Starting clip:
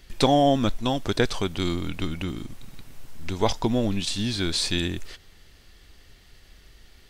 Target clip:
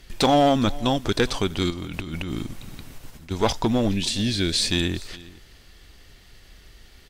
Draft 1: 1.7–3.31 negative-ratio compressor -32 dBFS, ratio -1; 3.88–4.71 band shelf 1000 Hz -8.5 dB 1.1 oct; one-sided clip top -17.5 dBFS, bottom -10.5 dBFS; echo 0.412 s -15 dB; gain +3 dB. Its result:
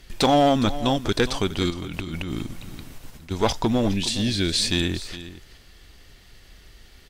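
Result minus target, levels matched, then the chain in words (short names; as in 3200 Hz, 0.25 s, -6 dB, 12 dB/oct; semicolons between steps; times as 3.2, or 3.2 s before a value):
echo-to-direct +6 dB
1.7–3.31 negative-ratio compressor -32 dBFS, ratio -1; 3.88–4.71 band shelf 1000 Hz -8.5 dB 1.1 oct; one-sided clip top -17.5 dBFS, bottom -10.5 dBFS; echo 0.412 s -21 dB; gain +3 dB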